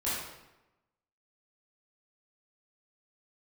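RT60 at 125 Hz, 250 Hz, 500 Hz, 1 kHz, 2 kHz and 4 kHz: 1.0 s, 1.0 s, 1.0 s, 0.95 s, 0.85 s, 0.75 s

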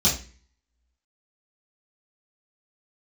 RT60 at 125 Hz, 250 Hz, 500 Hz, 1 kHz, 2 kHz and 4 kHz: 0.50 s, 0.50 s, 0.40 s, 0.35 s, 0.45 s, 0.40 s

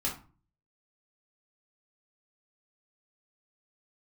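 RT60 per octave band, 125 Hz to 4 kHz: 0.65 s, 0.50 s, 0.35 s, 0.35 s, 0.30 s, 0.25 s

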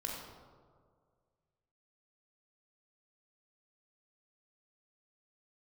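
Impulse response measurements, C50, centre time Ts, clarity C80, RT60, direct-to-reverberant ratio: 1.0 dB, 73 ms, 3.0 dB, 1.9 s, -2.0 dB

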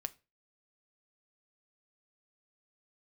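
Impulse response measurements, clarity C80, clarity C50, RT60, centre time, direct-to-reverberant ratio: 28.5 dB, 22.5 dB, 0.30 s, 2 ms, 11.0 dB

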